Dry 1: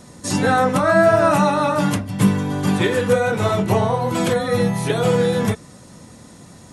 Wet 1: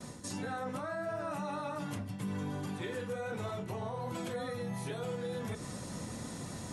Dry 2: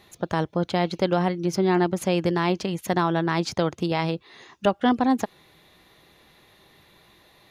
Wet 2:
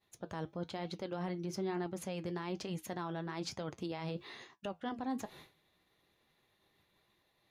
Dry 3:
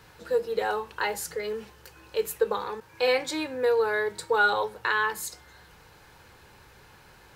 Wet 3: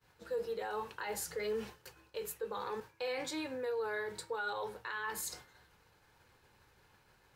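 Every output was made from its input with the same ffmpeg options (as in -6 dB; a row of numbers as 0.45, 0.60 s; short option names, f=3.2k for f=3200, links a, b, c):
-af "agate=range=-33dB:threshold=-43dB:ratio=3:detection=peak,areverse,acompressor=threshold=-33dB:ratio=6,areverse,alimiter=level_in=6.5dB:limit=-24dB:level=0:latency=1:release=97,volume=-6.5dB,flanger=delay=7.2:depth=3.7:regen=-67:speed=1.1:shape=triangular,volume=5dB"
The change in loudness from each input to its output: -21.0, -16.5, -12.0 LU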